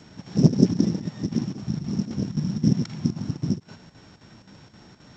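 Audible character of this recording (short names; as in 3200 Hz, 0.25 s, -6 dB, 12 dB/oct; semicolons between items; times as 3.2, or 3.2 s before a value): a buzz of ramps at a fixed pitch in blocks of 8 samples; chopped level 3.8 Hz, depth 60%, duty 80%; G.722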